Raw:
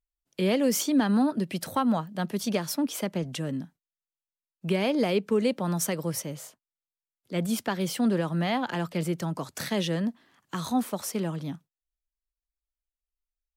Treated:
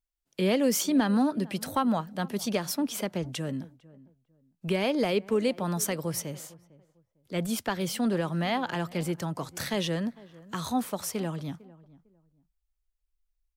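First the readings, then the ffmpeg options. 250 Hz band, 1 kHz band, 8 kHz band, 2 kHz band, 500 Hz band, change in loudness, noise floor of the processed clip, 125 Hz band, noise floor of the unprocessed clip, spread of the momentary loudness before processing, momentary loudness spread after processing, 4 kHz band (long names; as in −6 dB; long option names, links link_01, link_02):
−1.5 dB, 0.0 dB, 0.0 dB, 0.0 dB, −0.5 dB, −1.0 dB, −81 dBFS, −2.0 dB, below −85 dBFS, 12 LU, 12 LU, 0.0 dB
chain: -filter_complex "[0:a]asplit=2[link_01][link_02];[link_02]adelay=452,lowpass=frequency=1000:poles=1,volume=-20dB,asplit=2[link_03][link_04];[link_04]adelay=452,lowpass=frequency=1000:poles=1,volume=0.25[link_05];[link_01][link_03][link_05]amix=inputs=3:normalize=0,asubboost=boost=4.5:cutoff=81"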